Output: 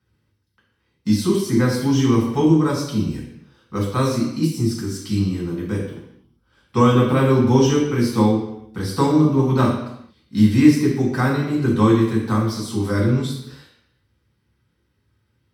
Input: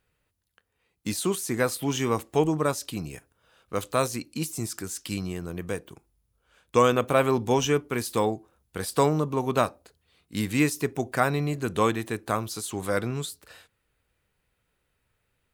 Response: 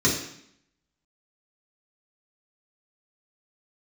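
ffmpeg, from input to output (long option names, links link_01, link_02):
-filter_complex "[0:a]asettb=1/sr,asplit=3[link_01][link_02][link_03];[link_01]atrim=end=5.764[link_04];[link_02]atrim=start=5.76:end=7.17,asetpts=PTS-STARTPTS,afade=type=in:duration=0.004:curve=qsin,afade=type=out:start_time=1.406:duration=0.004:curve=qsin,bandreject=frequency=6500:width=6.9[link_05];[link_03]atrim=start=7.166[link_06];[link_04][link_05]acrossfade=duration=0.004:curve1=hsin:curve2=qsin[link_07];[link_07][link_06]acrossfade=duration=0.004:curve1=qsin:curve2=hsin[link_08];[1:a]atrim=start_sample=2205,afade=type=out:start_time=0.45:duration=0.01,atrim=end_sample=20286,asetrate=37044,aresample=44100[link_09];[link_08][link_09]afir=irnorm=-1:irlink=0,volume=-12.5dB"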